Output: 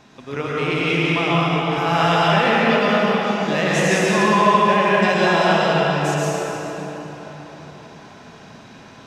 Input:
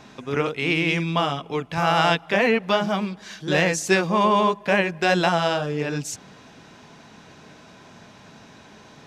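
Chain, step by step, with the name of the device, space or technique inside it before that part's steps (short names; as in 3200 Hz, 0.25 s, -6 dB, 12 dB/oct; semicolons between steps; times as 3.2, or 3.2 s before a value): cathedral (reverb RT60 4.4 s, pre-delay 0.102 s, DRR -7.5 dB); gain -3.5 dB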